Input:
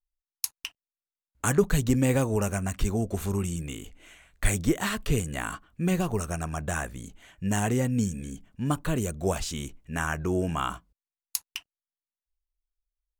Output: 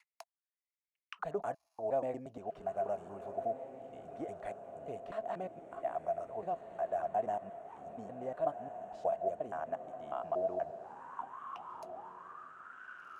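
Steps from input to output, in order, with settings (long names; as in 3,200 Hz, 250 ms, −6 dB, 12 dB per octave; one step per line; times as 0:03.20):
slices reordered back to front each 119 ms, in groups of 5
feedback delay with all-pass diffusion 1,587 ms, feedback 54%, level −10 dB
envelope filter 670–2,200 Hz, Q 13, down, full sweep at −30.5 dBFS
level +8 dB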